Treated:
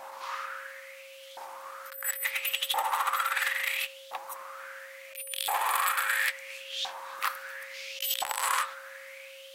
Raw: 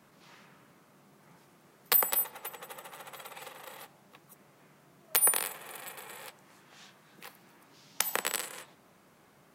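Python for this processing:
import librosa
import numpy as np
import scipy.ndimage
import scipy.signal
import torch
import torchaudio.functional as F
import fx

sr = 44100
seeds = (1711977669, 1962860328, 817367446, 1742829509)

y = fx.filter_lfo_highpass(x, sr, shape='saw_up', hz=0.73, low_hz=780.0, high_hz=3500.0, q=5.7)
y = fx.over_compress(y, sr, threshold_db=-39.0, ratio=-1.0)
y = y + 10.0 ** (-56.0 / 20.0) * np.sin(2.0 * np.pi * 540.0 * np.arange(len(y)) / sr)
y = y * 10.0 ** (7.5 / 20.0)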